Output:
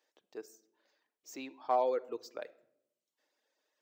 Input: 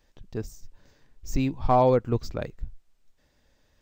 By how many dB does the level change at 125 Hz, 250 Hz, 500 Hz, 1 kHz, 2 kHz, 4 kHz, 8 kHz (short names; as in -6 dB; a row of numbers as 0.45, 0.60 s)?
under -40 dB, -19.0 dB, -9.5 dB, -9.0 dB, -9.0 dB, -9.0 dB, -8.5 dB